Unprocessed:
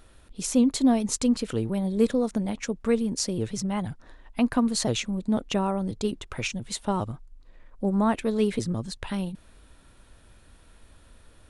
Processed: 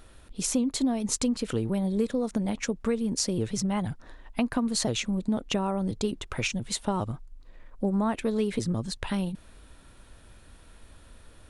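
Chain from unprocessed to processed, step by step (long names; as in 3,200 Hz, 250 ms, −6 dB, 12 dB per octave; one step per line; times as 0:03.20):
downward compressor 6 to 1, threshold −25 dBFS, peak gain reduction 9.5 dB
level +2 dB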